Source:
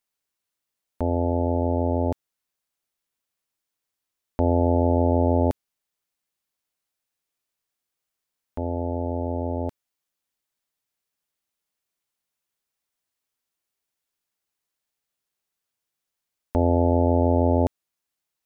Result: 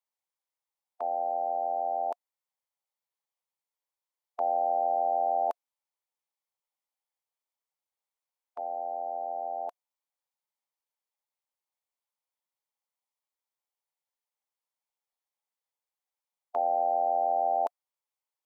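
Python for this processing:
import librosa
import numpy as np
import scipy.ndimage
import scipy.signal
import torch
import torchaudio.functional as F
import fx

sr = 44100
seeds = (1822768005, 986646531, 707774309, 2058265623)

y = fx.ladder_highpass(x, sr, hz=500.0, resonance_pct=65)
y = fx.formant_shift(y, sr, semitones=4)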